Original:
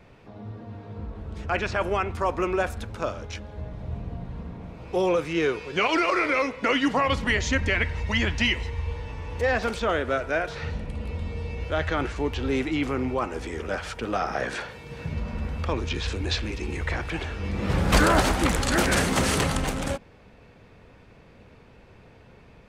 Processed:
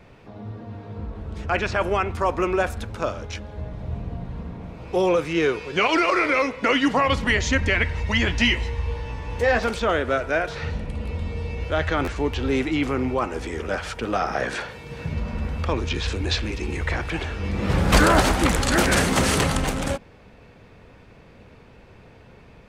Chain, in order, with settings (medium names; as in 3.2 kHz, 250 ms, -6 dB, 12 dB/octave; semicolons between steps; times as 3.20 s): 8.24–9.64 s: doubling 17 ms -7.5 dB; buffer glitch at 12.04 s, samples 512, times 2; trim +3 dB